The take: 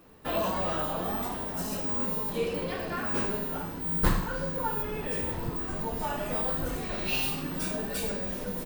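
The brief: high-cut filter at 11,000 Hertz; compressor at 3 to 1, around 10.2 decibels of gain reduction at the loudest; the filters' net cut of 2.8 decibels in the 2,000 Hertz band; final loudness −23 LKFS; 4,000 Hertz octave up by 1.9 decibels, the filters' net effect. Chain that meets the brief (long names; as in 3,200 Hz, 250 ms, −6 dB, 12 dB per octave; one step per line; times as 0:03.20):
low-pass filter 11,000 Hz
parametric band 2,000 Hz −5.5 dB
parametric band 4,000 Hz +4.5 dB
downward compressor 3 to 1, threshold −33 dBFS
level +14 dB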